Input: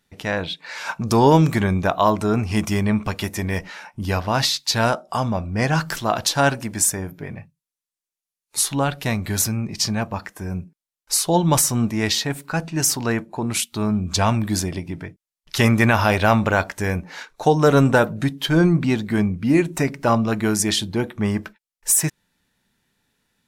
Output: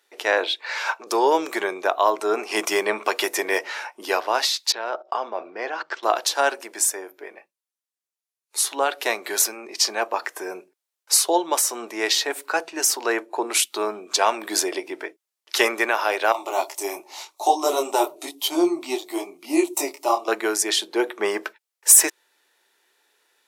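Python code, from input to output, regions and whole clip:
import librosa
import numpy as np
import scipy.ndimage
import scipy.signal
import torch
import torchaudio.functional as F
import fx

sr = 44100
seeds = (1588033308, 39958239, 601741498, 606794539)

y = fx.chain(x, sr, fx.bessel_highpass(hz=330.0, order=2),
    fx.peak_eq(hz=9900.0, db=-7.5, octaves=1.1), at=(0.57, 1.07))
y = fx.chain(y, sr, fx.gaussian_blur(sigma=1.9),
    fx.level_steps(step_db=15), at=(4.72, 6.03))
y = fx.chain(y, sr, fx.high_shelf(hz=7100.0, db=11.0),
    fx.fixed_phaser(hz=320.0, stages=8),
    fx.detune_double(cents=32), at=(16.32, 20.28))
y = scipy.signal.sosfilt(scipy.signal.ellip(4, 1.0, 70, 360.0, 'highpass', fs=sr, output='sos'), y)
y = fx.rider(y, sr, range_db=5, speed_s=0.5)
y = y * 10.0 ** (1.5 / 20.0)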